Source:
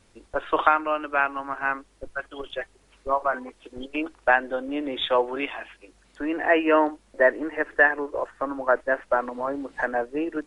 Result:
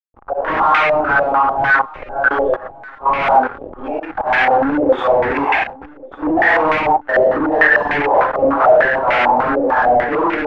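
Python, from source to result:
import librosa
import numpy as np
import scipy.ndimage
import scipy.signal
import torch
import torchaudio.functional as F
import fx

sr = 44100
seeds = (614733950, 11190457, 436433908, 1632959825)

p1 = fx.phase_scramble(x, sr, seeds[0], window_ms=200)
p2 = fx.level_steps(p1, sr, step_db=10)
p3 = fx.leveller(p2, sr, passes=5)
p4 = fx.auto_swell(p3, sr, attack_ms=244.0)
p5 = fx.backlash(p4, sr, play_db=-40.0)
p6 = fx.peak_eq(p5, sr, hz=810.0, db=11.0, octaves=0.23)
p7 = np.clip(p6, -10.0 ** (-20.0 / 20.0), 10.0 ** (-20.0 / 20.0))
p8 = fx.harmonic_tremolo(p7, sr, hz=1.9, depth_pct=50, crossover_hz=430.0)
p9 = p8 + fx.echo_feedback(p8, sr, ms=1136, feedback_pct=45, wet_db=-23.0, dry=0)
p10 = fx.filter_held_lowpass(p9, sr, hz=6.7, low_hz=570.0, high_hz=2200.0)
y = F.gain(torch.from_numpy(p10), 5.0).numpy()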